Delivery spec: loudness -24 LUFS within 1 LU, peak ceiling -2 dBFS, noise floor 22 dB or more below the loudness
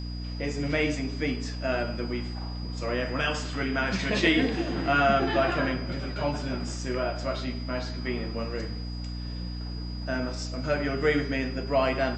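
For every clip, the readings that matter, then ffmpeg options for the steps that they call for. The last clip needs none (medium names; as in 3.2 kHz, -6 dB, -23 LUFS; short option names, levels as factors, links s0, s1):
hum 60 Hz; highest harmonic 300 Hz; hum level -32 dBFS; steady tone 4.9 kHz; tone level -44 dBFS; loudness -28.5 LUFS; peak level -8.5 dBFS; loudness target -24.0 LUFS
-> -af "bandreject=f=60:t=h:w=4,bandreject=f=120:t=h:w=4,bandreject=f=180:t=h:w=4,bandreject=f=240:t=h:w=4,bandreject=f=300:t=h:w=4"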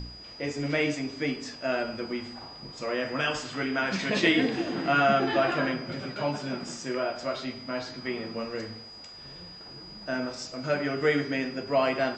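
hum not found; steady tone 4.9 kHz; tone level -44 dBFS
-> -af "bandreject=f=4900:w=30"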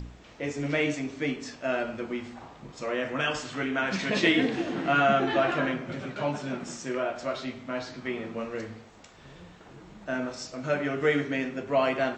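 steady tone not found; loudness -29.0 LUFS; peak level -9.0 dBFS; loudness target -24.0 LUFS
-> -af "volume=1.78"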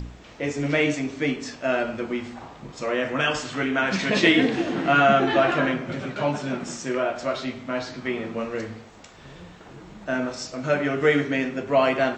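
loudness -24.0 LUFS; peak level -4.0 dBFS; noise floor -46 dBFS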